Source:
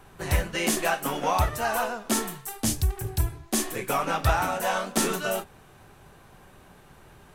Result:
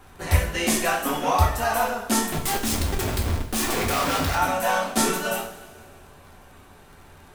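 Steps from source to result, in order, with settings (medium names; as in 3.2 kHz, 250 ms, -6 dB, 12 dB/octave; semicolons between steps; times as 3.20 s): 2.32–4.35 s: Schmitt trigger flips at -38.5 dBFS; two-slope reverb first 0.44 s, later 2.2 s, from -18 dB, DRR -0.5 dB; crackle 47 per s -43 dBFS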